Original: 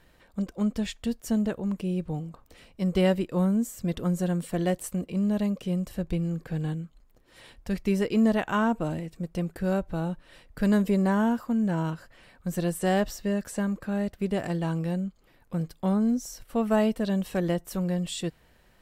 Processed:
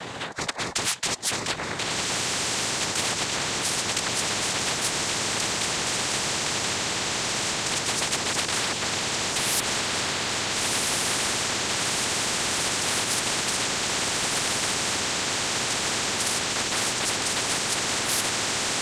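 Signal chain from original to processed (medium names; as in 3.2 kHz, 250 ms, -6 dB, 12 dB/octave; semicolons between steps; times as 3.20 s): pitch bend over the whole clip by +6 st starting unshifted; in parallel at 0 dB: peak limiter -23 dBFS, peak gain reduction 10.5 dB; on the sum: painted sound rise, 9.35–9.60 s, 2.3–5.1 kHz -30 dBFS; noise-vocoded speech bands 6; on a send: echo that smears into a reverb 1408 ms, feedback 67%, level -4 dB; on the sum: spectrum-flattening compressor 10:1; trim -5 dB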